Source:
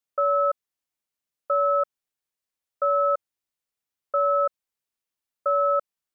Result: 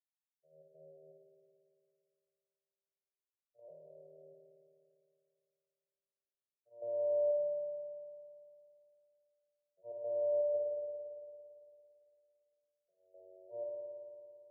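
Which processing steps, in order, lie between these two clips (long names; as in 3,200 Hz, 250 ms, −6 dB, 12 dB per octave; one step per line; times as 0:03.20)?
vocoder with an arpeggio as carrier minor triad, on F#3, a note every 520 ms
noise gate −21 dBFS, range −33 dB
Chebyshev band-stop filter 390–850 Hz, order 4
change of speed 0.424×
gate pattern ".xxxx.xxx.xxxx." 121 BPM −12 dB
spectral peaks only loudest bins 16
spring reverb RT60 2.5 s, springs 56 ms, chirp 50 ms, DRR −2 dB
level −7.5 dB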